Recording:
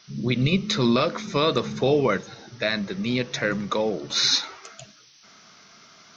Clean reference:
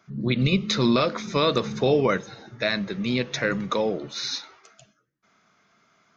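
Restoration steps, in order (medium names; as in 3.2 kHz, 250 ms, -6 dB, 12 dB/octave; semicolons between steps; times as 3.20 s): noise print and reduce 12 dB; trim 0 dB, from 4.10 s -9.5 dB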